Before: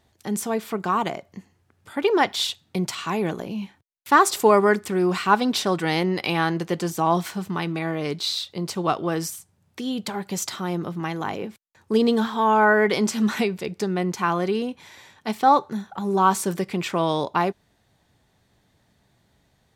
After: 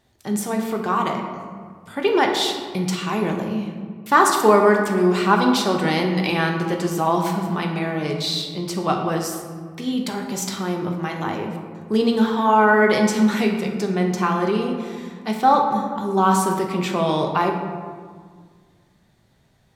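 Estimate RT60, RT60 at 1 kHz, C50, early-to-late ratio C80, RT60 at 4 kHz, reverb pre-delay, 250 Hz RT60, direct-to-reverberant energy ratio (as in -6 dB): 1.7 s, 1.7 s, 5.0 dB, 6.5 dB, 0.90 s, 5 ms, 2.2 s, 1.5 dB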